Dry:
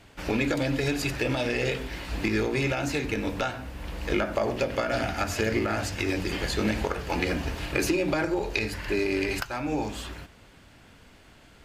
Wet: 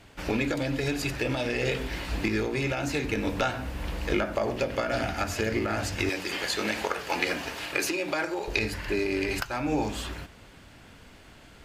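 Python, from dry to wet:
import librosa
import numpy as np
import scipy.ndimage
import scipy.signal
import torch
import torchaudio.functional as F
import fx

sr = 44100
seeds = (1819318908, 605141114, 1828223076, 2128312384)

y = fx.highpass(x, sr, hz=710.0, slope=6, at=(6.09, 8.48))
y = fx.rider(y, sr, range_db=5, speed_s=0.5)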